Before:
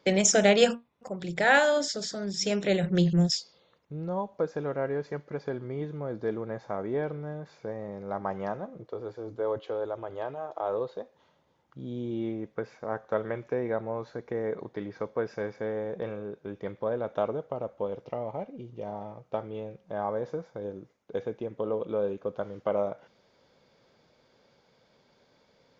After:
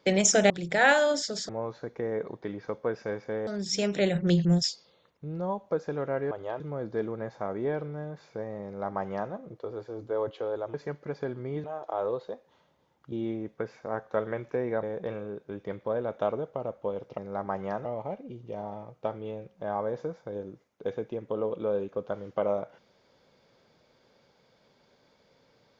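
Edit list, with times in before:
0:00.50–0:01.16: remove
0:04.99–0:05.89: swap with 0:10.03–0:10.32
0:07.94–0:08.61: duplicate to 0:18.14
0:11.80–0:12.10: remove
0:13.81–0:15.79: move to 0:02.15

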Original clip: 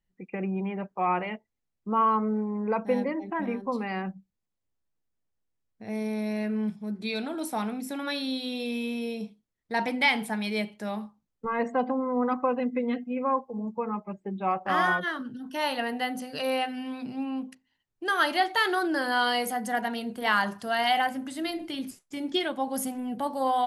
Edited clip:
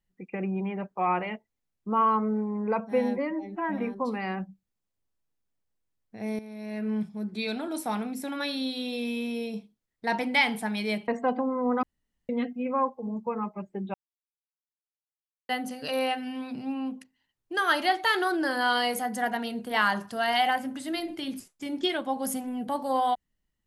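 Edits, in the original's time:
0:02.80–0:03.46: time-stretch 1.5×
0:06.06–0:06.57: fade in quadratic, from −13 dB
0:10.75–0:11.59: remove
0:12.34–0:12.80: fill with room tone
0:14.45–0:16.00: silence

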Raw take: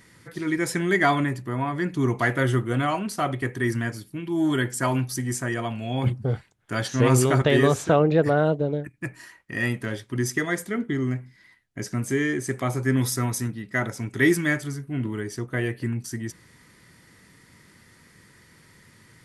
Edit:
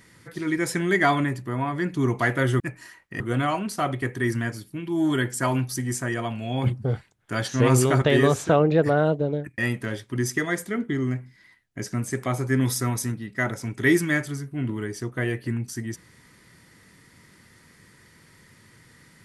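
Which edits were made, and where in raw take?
0:08.98–0:09.58: move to 0:02.60
0:12.10–0:12.46: remove

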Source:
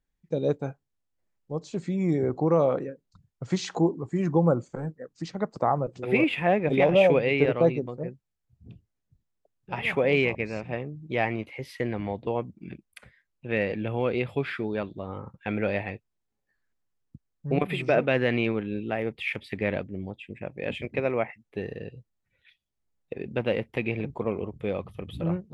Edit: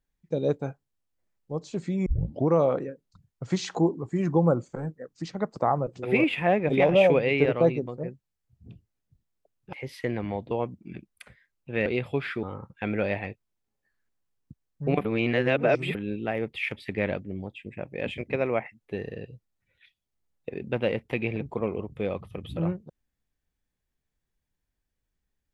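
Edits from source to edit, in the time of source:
0:02.06: tape start 0.42 s
0:09.73–0:11.49: remove
0:13.62–0:14.09: remove
0:14.66–0:15.07: remove
0:17.69–0:18.59: reverse

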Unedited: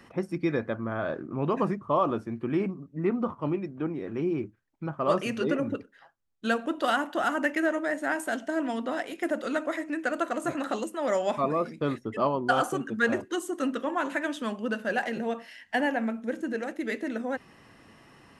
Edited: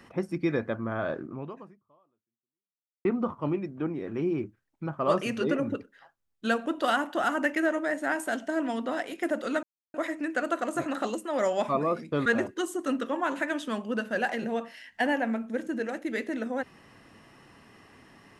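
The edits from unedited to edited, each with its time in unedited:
0:01.26–0:03.05: fade out exponential
0:09.63: splice in silence 0.31 s
0:11.95–0:13.00: remove

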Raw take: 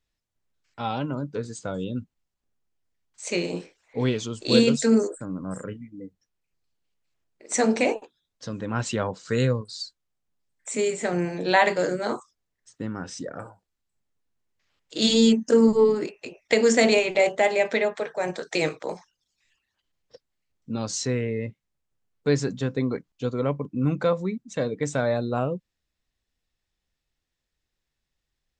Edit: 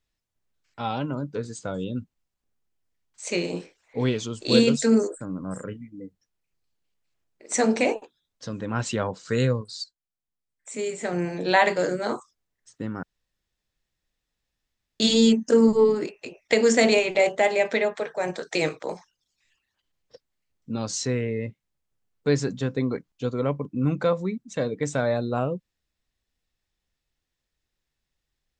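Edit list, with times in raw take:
0:09.84–0:11.32: fade in quadratic, from −13 dB
0:13.03–0:15.00: fill with room tone

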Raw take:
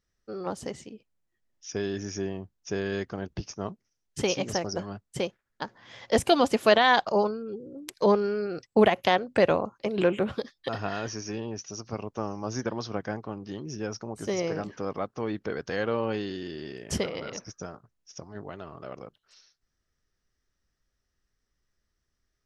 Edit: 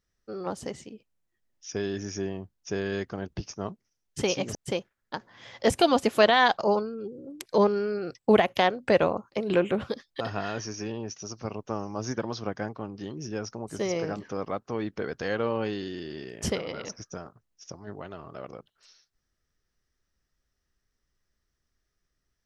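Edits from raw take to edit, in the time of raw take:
0:04.55–0:05.03: remove

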